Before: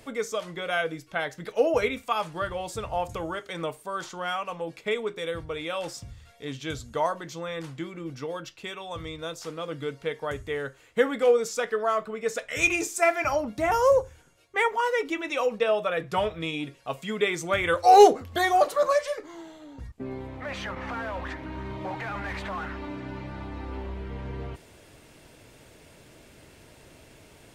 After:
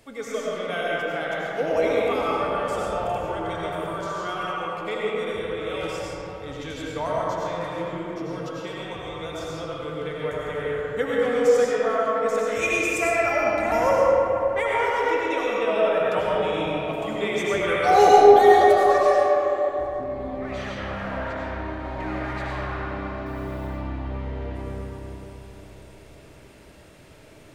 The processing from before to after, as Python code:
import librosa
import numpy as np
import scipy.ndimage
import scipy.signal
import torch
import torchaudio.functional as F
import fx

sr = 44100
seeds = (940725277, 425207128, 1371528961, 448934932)

y = fx.quant_dither(x, sr, seeds[0], bits=10, dither='triangular', at=(23.26, 23.67))
y = fx.rev_freeverb(y, sr, rt60_s=4.0, hf_ratio=0.4, predelay_ms=55, drr_db=-6.5)
y = y * 10.0 ** (-4.5 / 20.0)